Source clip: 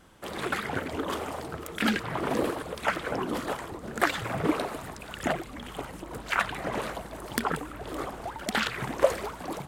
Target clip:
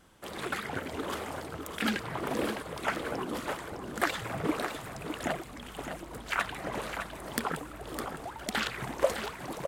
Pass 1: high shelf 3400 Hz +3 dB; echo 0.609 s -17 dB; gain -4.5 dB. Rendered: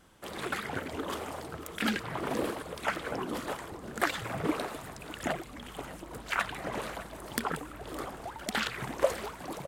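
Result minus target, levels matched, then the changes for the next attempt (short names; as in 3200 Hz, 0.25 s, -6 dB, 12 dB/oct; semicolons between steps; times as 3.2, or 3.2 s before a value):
echo-to-direct -9 dB
change: echo 0.609 s -8 dB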